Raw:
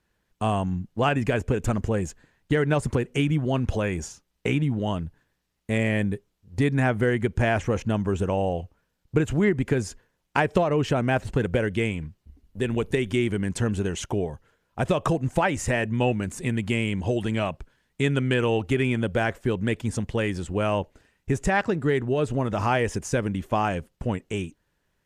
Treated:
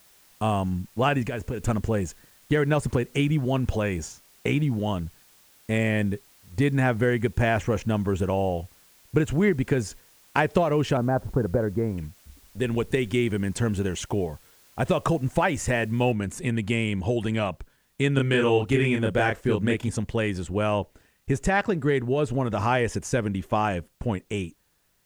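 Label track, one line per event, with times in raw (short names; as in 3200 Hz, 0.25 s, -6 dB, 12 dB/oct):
1.220000	1.670000	compressor 3:1, threshold -27 dBFS
10.970000	11.980000	inverse Chebyshev low-pass stop band from 3300 Hz, stop band 50 dB
16.120000	16.120000	noise floor step -57 dB -70 dB
18.140000	19.890000	doubler 29 ms -2.5 dB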